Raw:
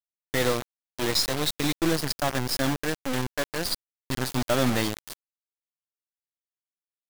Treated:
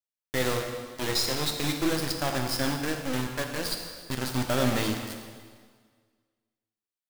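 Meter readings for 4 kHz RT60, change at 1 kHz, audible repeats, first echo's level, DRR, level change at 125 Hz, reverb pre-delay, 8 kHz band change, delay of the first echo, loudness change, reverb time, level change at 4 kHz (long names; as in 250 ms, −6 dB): 1.6 s, −1.5 dB, no echo audible, no echo audible, 3.0 dB, −1.0 dB, 4 ms, −2.0 dB, no echo audible, −2.0 dB, 1.7 s, −2.0 dB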